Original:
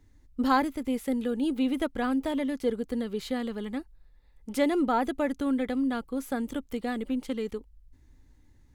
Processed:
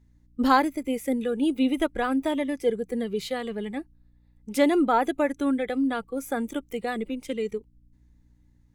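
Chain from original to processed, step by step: hum 60 Hz, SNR 24 dB; spectral noise reduction 11 dB; trim +4.5 dB

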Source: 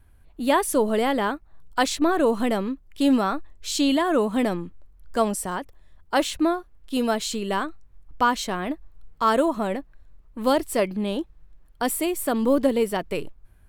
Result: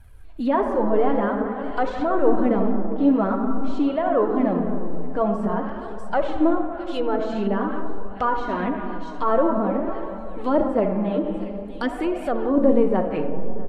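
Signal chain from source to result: transient shaper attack -3 dB, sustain +3 dB; in parallel at -2 dB: compression, threshold -35 dBFS, peak gain reduction 18 dB; on the sum: algorithmic reverb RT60 2.6 s, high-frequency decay 0.3×, pre-delay 10 ms, DRR 4 dB; flange 0.49 Hz, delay 1.2 ms, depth 5.7 ms, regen -9%; on a send: delay 645 ms -20.5 dB; on the sum: low-pass that closes with the level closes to 1.2 kHz, closed at -21 dBFS; trim +3 dB

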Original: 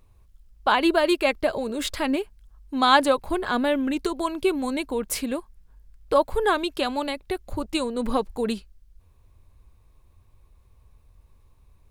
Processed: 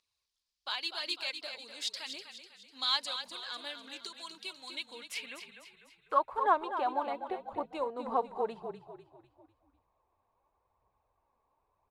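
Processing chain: band-pass sweep 4.7 kHz -> 820 Hz, 4.50–6.64 s; frequency-shifting echo 249 ms, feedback 47%, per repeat -32 Hz, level -9 dB; phaser 0.92 Hz, delay 4.6 ms, feedback 35%; trim -1 dB

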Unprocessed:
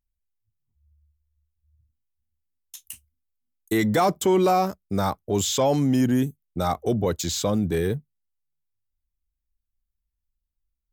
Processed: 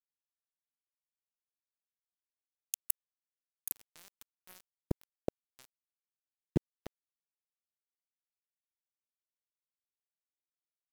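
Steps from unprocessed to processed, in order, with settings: 2.83–5.06 s: treble shelf 8.8 kHz +12 dB; inverted gate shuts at -27 dBFS, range -37 dB; small samples zeroed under -48.5 dBFS; trim +12.5 dB

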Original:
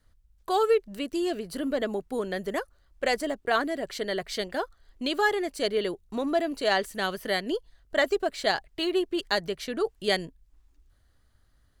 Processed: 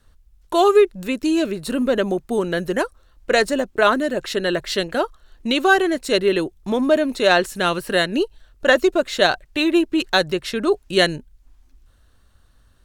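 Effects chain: speed mistake 48 kHz file played as 44.1 kHz; trim +9 dB

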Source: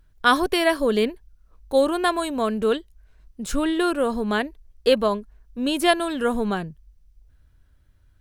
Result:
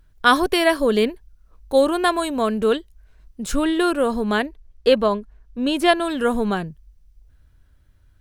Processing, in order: 4.46–6.05 s: treble shelf 7.1 kHz -9.5 dB; trim +2.5 dB

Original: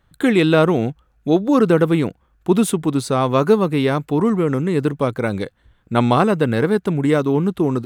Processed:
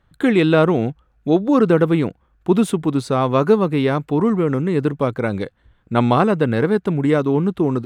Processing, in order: treble shelf 5.8 kHz -10 dB

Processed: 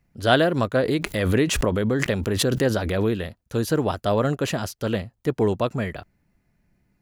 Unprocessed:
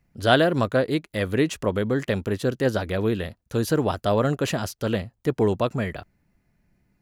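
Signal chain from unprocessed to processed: 0.83–3.18 s: swell ahead of each attack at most 26 dB/s

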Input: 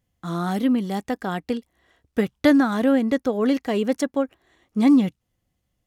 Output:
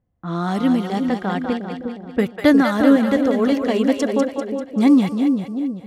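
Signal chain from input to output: level-controlled noise filter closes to 1.1 kHz, open at -18 dBFS; two-band feedback delay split 560 Hz, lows 357 ms, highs 196 ms, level -5 dB; trim +2.5 dB

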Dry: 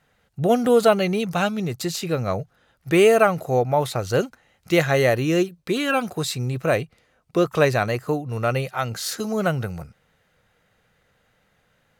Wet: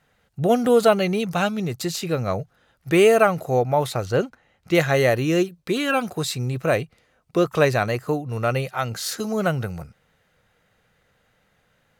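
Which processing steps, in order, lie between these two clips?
4.05–4.75 s: treble shelf 4.8 kHz -10.5 dB

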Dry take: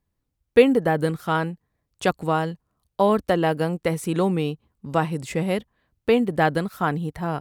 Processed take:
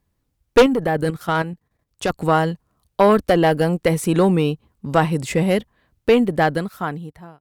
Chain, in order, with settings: fade out at the end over 1.46 s; Chebyshev shaper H 2 -8 dB, 3 -18 dB, 5 -11 dB, 7 -30 dB, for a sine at -2 dBFS; 0.66–2.18 s: level held to a coarse grid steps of 10 dB; trim +1.5 dB

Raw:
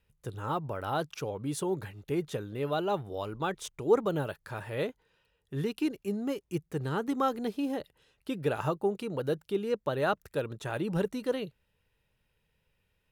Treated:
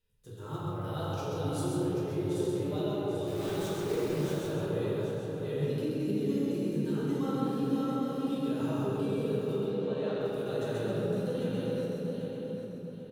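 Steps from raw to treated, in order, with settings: backward echo that repeats 396 ms, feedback 56%, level -3 dB; high-order bell 1.3 kHz -8 dB 2.3 oct; harmonic-percussive split harmonic +7 dB; bass shelf 470 Hz -6 dB; compression 12:1, threshold -27 dBFS, peak gain reduction 12.5 dB; flange 0.81 Hz, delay 9.2 ms, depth 3.2 ms, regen -39%; 3.26–4.39 s: companded quantiser 4-bit; 9.61–10.21 s: band-pass 200–5200 Hz; delay 132 ms -4.5 dB; reverberation RT60 2.9 s, pre-delay 3 ms, DRR -7 dB; trim -6.5 dB

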